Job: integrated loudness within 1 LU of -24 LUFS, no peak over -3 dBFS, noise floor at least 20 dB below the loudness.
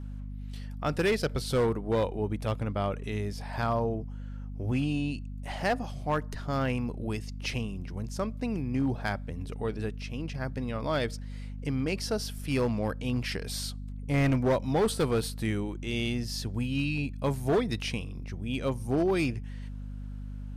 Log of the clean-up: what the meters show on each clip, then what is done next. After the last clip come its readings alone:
clipped samples 1.0%; clipping level -20.5 dBFS; hum 50 Hz; highest harmonic 250 Hz; hum level -36 dBFS; loudness -31.0 LUFS; peak level -20.5 dBFS; loudness target -24.0 LUFS
-> clip repair -20.5 dBFS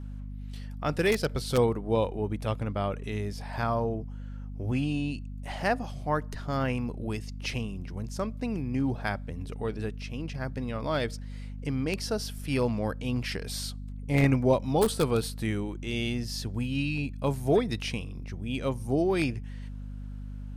clipped samples 0.0%; hum 50 Hz; highest harmonic 200 Hz; hum level -36 dBFS
-> hum notches 50/100/150/200 Hz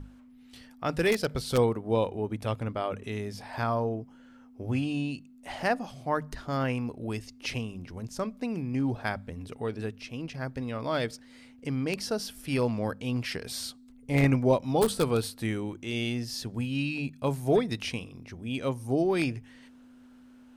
hum not found; loudness -30.5 LUFS; peak level -11.5 dBFS; loudness target -24.0 LUFS
-> trim +6.5 dB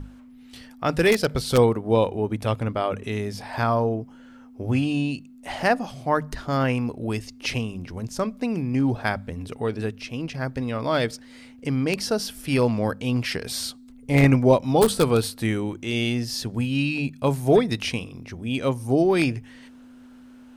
loudness -24.0 LUFS; peak level -5.0 dBFS; noise floor -47 dBFS

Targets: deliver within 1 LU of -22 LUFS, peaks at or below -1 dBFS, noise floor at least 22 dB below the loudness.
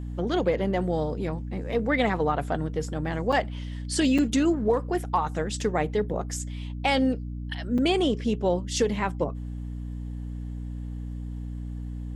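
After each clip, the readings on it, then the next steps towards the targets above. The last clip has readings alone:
dropouts 3; longest dropout 5.6 ms; hum 60 Hz; highest harmonic 300 Hz; hum level -31 dBFS; loudness -27.5 LUFS; peak level -11.0 dBFS; loudness target -22.0 LUFS
-> interpolate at 3.32/4.18/7.78 s, 5.6 ms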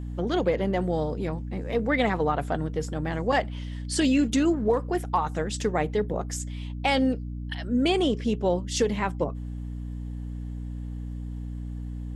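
dropouts 0; hum 60 Hz; highest harmonic 300 Hz; hum level -31 dBFS
-> hum notches 60/120/180/240/300 Hz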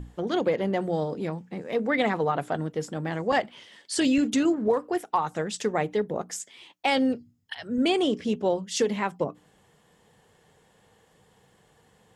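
hum not found; loudness -27.0 LUFS; peak level -12.0 dBFS; loudness target -22.0 LUFS
-> trim +5 dB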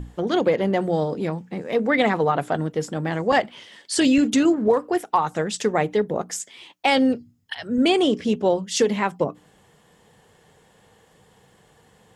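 loudness -22.0 LUFS; peak level -7.0 dBFS; noise floor -57 dBFS

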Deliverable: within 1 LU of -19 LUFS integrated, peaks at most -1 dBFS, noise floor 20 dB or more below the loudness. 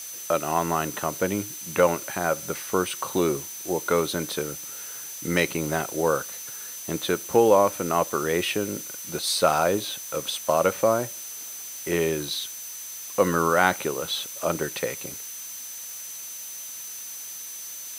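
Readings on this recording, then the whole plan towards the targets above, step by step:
steady tone 6.1 kHz; tone level -38 dBFS; noise floor -38 dBFS; noise floor target -46 dBFS; loudness -26.0 LUFS; peak level -3.5 dBFS; loudness target -19.0 LUFS
-> band-stop 6.1 kHz, Q 30; noise reduction 8 dB, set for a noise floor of -38 dBFS; trim +7 dB; peak limiter -1 dBFS

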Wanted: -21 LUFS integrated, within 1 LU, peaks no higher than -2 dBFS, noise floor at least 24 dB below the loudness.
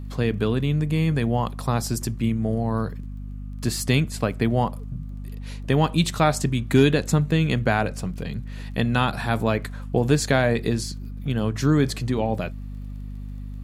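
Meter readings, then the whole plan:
tick rate 20 per s; hum 50 Hz; highest harmonic 250 Hz; hum level -31 dBFS; loudness -23.5 LUFS; peak level -5.5 dBFS; loudness target -21.0 LUFS
-> de-click; de-hum 50 Hz, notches 5; trim +2.5 dB

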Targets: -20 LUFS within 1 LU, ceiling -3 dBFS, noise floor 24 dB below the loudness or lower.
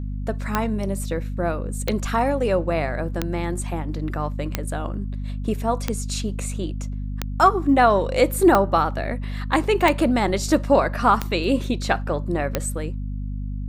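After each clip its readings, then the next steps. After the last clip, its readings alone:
clicks found 10; hum 50 Hz; highest harmonic 250 Hz; hum level -26 dBFS; loudness -23.0 LUFS; peak level -4.0 dBFS; loudness target -20.0 LUFS
-> de-click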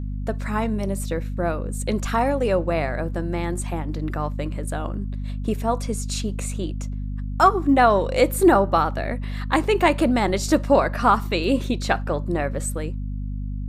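clicks found 0; hum 50 Hz; highest harmonic 250 Hz; hum level -26 dBFS
-> de-hum 50 Hz, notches 5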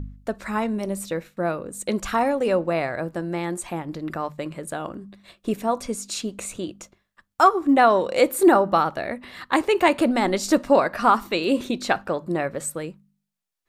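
hum not found; loudness -23.0 LUFS; peak level -5.0 dBFS; loudness target -20.0 LUFS
-> trim +3 dB; peak limiter -3 dBFS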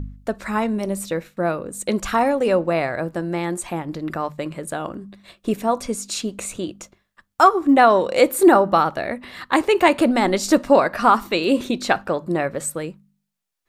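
loudness -20.0 LUFS; peak level -3.0 dBFS; noise floor -74 dBFS

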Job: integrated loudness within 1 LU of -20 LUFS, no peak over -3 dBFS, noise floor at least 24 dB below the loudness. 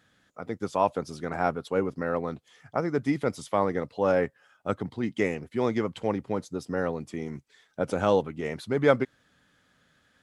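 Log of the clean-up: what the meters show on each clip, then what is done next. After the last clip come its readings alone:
loudness -29.0 LUFS; peak level -8.0 dBFS; loudness target -20.0 LUFS
-> trim +9 dB; peak limiter -3 dBFS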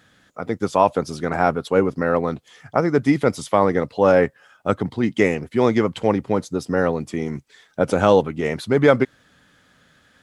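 loudness -20.5 LUFS; peak level -3.0 dBFS; noise floor -58 dBFS

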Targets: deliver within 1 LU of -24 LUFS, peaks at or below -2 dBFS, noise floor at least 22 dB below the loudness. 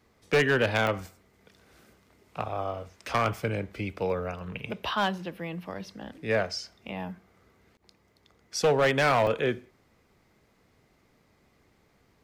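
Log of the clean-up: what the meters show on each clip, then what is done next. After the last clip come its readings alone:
clipped samples 0.7%; clipping level -17.5 dBFS; dropouts 4; longest dropout 1.2 ms; loudness -28.5 LUFS; peak level -17.5 dBFS; loudness target -24.0 LUFS
-> clip repair -17.5 dBFS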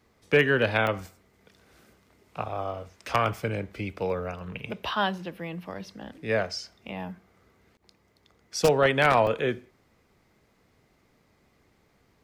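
clipped samples 0.0%; dropouts 4; longest dropout 1.2 ms
-> interpolate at 0.87/4.10/5.19/9.27 s, 1.2 ms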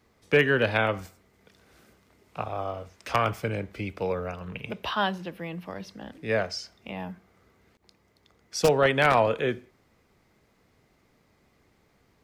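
dropouts 0; loudness -27.5 LUFS; peak level -8.5 dBFS; loudness target -24.0 LUFS
-> trim +3.5 dB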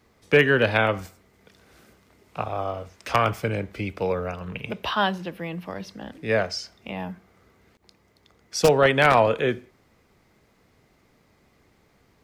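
loudness -24.0 LUFS; peak level -5.0 dBFS; noise floor -63 dBFS

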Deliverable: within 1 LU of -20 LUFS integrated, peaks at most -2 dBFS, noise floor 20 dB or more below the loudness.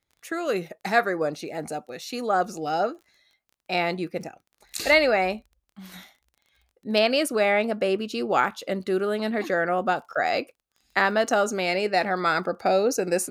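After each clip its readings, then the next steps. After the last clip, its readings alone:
tick rate 21 per s; loudness -24.5 LUFS; peak level -7.0 dBFS; loudness target -20.0 LUFS
-> de-click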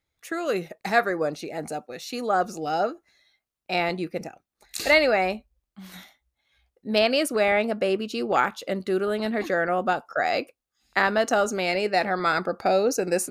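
tick rate 0 per s; loudness -24.5 LUFS; peak level -7.0 dBFS; loudness target -20.0 LUFS
-> trim +4.5 dB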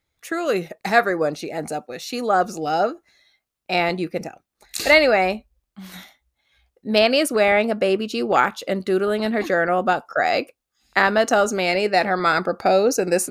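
loudness -20.0 LUFS; peak level -2.5 dBFS; noise floor -80 dBFS

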